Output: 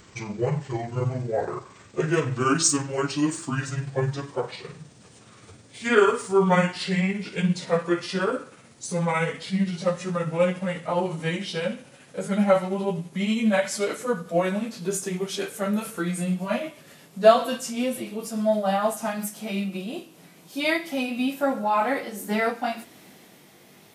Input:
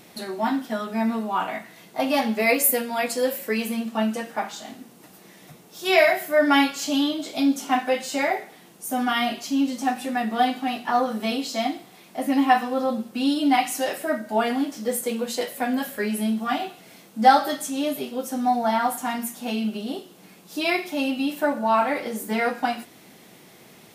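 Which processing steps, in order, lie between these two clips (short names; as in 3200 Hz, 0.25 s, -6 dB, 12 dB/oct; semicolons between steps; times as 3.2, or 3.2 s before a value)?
gliding pitch shift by -10.5 st ending unshifted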